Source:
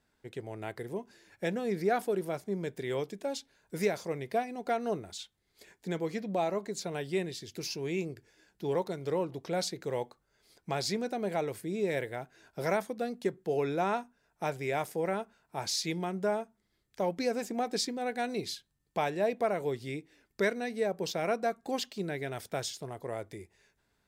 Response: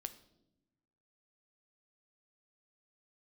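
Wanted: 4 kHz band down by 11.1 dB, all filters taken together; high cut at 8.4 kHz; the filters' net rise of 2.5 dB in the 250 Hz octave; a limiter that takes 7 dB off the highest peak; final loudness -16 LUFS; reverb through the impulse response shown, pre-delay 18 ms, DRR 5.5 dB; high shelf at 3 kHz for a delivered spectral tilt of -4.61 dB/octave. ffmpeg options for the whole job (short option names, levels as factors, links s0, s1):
-filter_complex "[0:a]lowpass=8400,equalizer=f=250:t=o:g=3.5,highshelf=f=3000:g=-9,equalizer=f=4000:t=o:g=-6,alimiter=limit=0.0668:level=0:latency=1,asplit=2[s0][s1];[1:a]atrim=start_sample=2205,adelay=18[s2];[s1][s2]afir=irnorm=-1:irlink=0,volume=0.794[s3];[s0][s3]amix=inputs=2:normalize=0,volume=8.41"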